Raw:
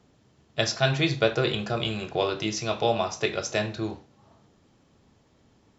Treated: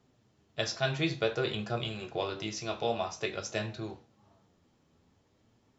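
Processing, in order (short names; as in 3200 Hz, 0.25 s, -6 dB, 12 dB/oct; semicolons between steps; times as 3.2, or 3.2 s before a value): flange 0.52 Hz, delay 7.4 ms, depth 5.6 ms, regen +56%; gain -3 dB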